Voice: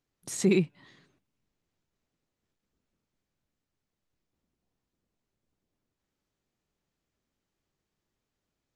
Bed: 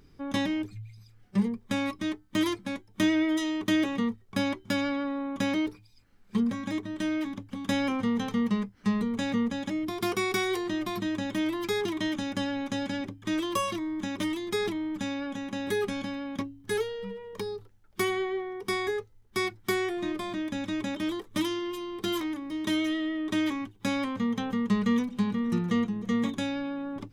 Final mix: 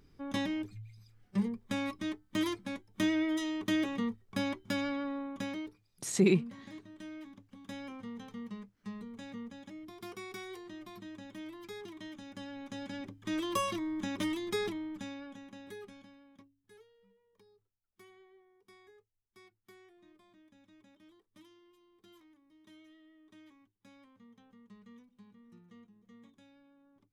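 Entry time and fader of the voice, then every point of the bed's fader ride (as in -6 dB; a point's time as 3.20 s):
5.75 s, -1.5 dB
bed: 5.16 s -5.5 dB
5.87 s -16.5 dB
12.21 s -16.5 dB
13.56 s -3.5 dB
14.49 s -3.5 dB
16.77 s -30.5 dB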